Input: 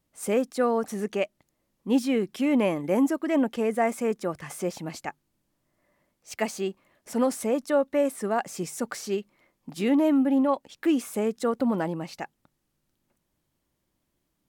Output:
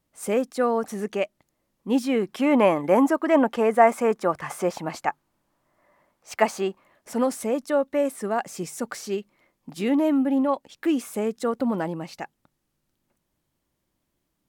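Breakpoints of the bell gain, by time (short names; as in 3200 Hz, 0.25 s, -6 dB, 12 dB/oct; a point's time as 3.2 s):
bell 990 Hz 2 oct
1.98 s +2.5 dB
2.47 s +11.5 dB
6.57 s +11.5 dB
7.31 s +1 dB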